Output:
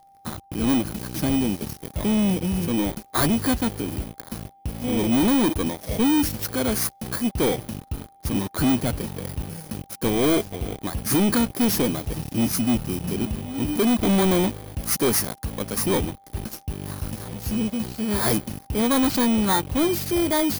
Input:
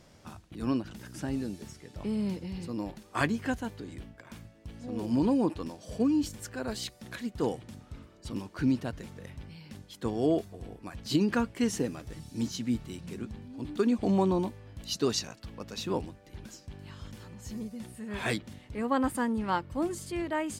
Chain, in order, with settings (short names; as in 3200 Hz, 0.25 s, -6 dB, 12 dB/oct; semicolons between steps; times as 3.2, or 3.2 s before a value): FFT order left unsorted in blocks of 16 samples; sample leveller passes 5; whine 790 Hz -47 dBFS; gain -4 dB